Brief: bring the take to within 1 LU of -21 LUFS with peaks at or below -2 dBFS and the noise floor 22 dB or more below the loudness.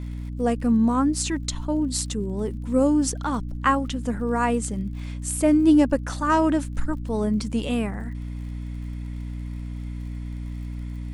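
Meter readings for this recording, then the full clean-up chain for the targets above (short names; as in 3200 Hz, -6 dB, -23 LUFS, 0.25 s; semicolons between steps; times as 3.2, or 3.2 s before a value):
ticks 53/s; hum 60 Hz; harmonics up to 300 Hz; hum level -29 dBFS; loudness -24.5 LUFS; peak -7.5 dBFS; loudness target -21.0 LUFS
-> de-click; notches 60/120/180/240/300 Hz; gain +3.5 dB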